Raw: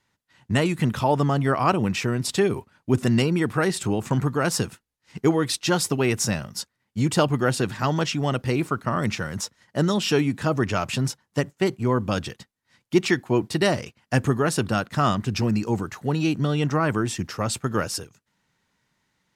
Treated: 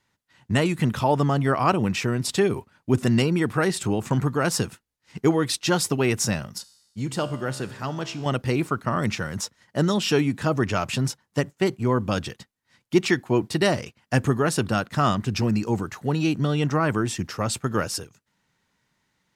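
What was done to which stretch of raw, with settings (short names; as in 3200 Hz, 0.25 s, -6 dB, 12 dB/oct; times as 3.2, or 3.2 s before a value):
6.58–8.26 resonator 66 Hz, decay 1.1 s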